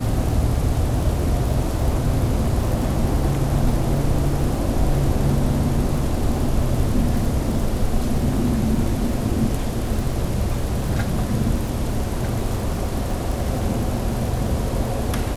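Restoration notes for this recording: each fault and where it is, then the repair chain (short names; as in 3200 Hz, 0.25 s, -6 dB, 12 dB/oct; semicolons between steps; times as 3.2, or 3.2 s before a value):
crackle 48/s -28 dBFS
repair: de-click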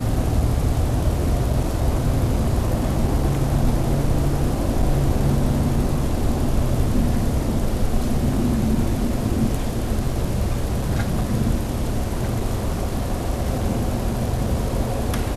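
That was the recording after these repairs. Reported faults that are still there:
none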